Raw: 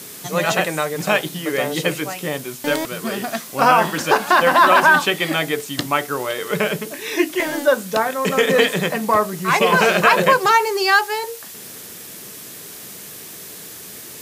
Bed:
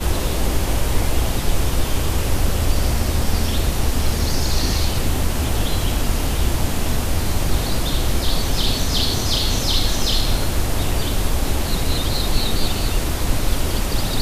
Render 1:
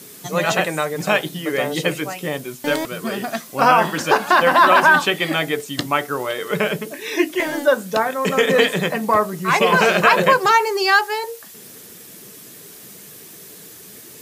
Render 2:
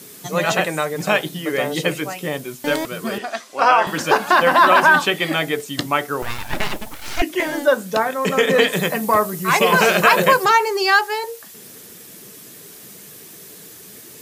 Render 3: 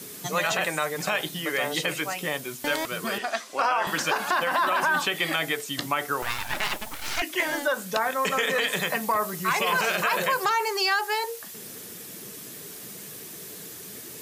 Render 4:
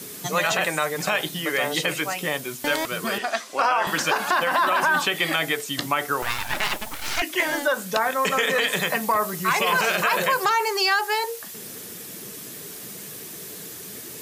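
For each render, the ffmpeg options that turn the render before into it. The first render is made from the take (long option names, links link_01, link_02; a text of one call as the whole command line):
ffmpeg -i in.wav -af "afftdn=noise_reduction=6:noise_floor=-37" out.wav
ffmpeg -i in.wav -filter_complex "[0:a]asettb=1/sr,asplit=3[link_01][link_02][link_03];[link_01]atrim=end=3.184[link_04];[link_02]atrim=start=3.18:end=3.87,asetpts=PTS-STARTPTS,afade=type=in:duration=0.004:curve=qsin,afade=type=out:start_time=0.686:duration=0.004:curve=qsin,highpass=430,lowpass=6900[link_05];[link_03]atrim=start=3.866[link_06];[link_04][link_05]acrossfade=duration=0.004:curve1=hsin:curve2=qsin[link_07];[link_07][link_06]acrossfade=duration=0.004:curve1=qsin:curve2=hsin,asettb=1/sr,asplit=3[link_08][link_09][link_10];[link_08]atrim=end=6.224[link_11];[link_09]atrim=start=6.22:end=7.22,asetpts=PTS-STARTPTS,afade=type=in:duration=0.004:curve=qsin,afade=type=out:start_time=0.996:duration=0.004:curve=qsin,aeval=exprs='abs(val(0))':channel_layout=same[link_12];[link_10]atrim=start=7.216[link_13];[link_11][link_12]acrossfade=duration=0.004:curve1=hsin:curve2=qsin[link_14];[link_14][link_13]acrossfade=duration=0.004:curve1=qsin:curve2=hsin,asettb=1/sr,asplit=3[link_15][link_16][link_17];[link_15]atrim=end=8.734[link_18];[link_16]atrim=start=8.73:end=10.45,asetpts=PTS-STARTPTS,afade=type=in:duration=0.004:curve=qsin,afade=type=out:start_time=1.716:duration=0.004:curve=qsin,highshelf=frequency=8400:gain=11.5[link_19];[link_17]atrim=start=10.446[link_20];[link_18][link_19]acrossfade=duration=0.004:curve1=hsin:curve2=qsin[link_21];[link_21][link_20]acrossfade=duration=0.004:curve1=qsin:curve2=hsin" out.wav
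ffmpeg -i in.wav -filter_complex "[0:a]alimiter=limit=-9.5dB:level=0:latency=1:release=42,acrossover=split=720|6800[link_01][link_02][link_03];[link_01]acompressor=threshold=-34dB:ratio=4[link_04];[link_02]acompressor=threshold=-22dB:ratio=4[link_05];[link_03]acompressor=threshold=-37dB:ratio=4[link_06];[link_04][link_05][link_06]amix=inputs=3:normalize=0" out.wav
ffmpeg -i in.wav -af "volume=3dB" out.wav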